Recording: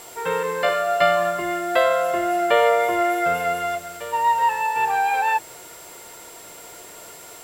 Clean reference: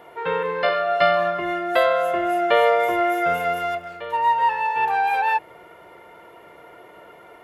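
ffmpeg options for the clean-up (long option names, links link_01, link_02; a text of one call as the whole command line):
ffmpeg -i in.wav -af "adeclick=threshold=4,bandreject=frequency=7600:width=30,afwtdn=0.0063" out.wav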